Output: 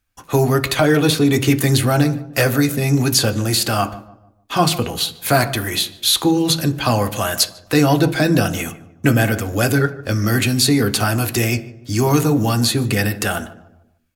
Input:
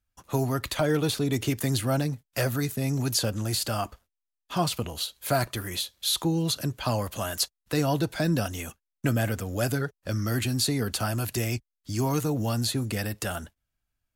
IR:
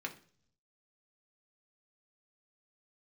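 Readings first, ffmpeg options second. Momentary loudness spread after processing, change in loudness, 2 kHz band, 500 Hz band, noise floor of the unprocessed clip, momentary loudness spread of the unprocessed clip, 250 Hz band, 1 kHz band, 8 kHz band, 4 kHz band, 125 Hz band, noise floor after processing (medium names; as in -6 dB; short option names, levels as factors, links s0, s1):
7 LU, +10.5 dB, +13.0 dB, +10.5 dB, -85 dBFS, 6 LU, +11.5 dB, +11.0 dB, +10.0 dB, +10.5 dB, +9.5 dB, -52 dBFS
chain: -filter_complex "[0:a]asplit=2[s0][s1];[s1]adelay=149,lowpass=f=1200:p=1,volume=0.168,asplit=2[s2][s3];[s3]adelay=149,lowpass=f=1200:p=1,volume=0.41,asplit=2[s4][s5];[s5]adelay=149,lowpass=f=1200:p=1,volume=0.41,asplit=2[s6][s7];[s7]adelay=149,lowpass=f=1200:p=1,volume=0.41[s8];[s0][s2][s4][s6][s8]amix=inputs=5:normalize=0,asplit=2[s9][s10];[1:a]atrim=start_sample=2205[s11];[s10][s11]afir=irnorm=-1:irlink=0,volume=1.06[s12];[s9][s12]amix=inputs=2:normalize=0,volume=2"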